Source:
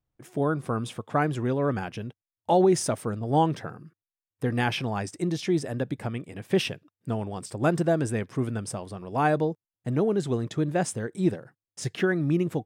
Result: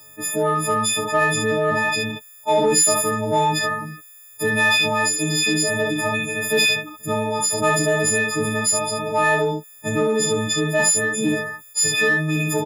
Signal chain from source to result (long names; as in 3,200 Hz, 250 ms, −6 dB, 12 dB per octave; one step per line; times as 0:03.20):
every partial snapped to a pitch grid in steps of 6 semitones
high-pass filter 380 Hz 6 dB per octave
ambience of single reflections 30 ms −5.5 dB, 63 ms −6.5 dB
in parallel at −7 dB: soft clipping −23.5 dBFS, distortion −9 dB
on the sum: envelope flattener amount 50%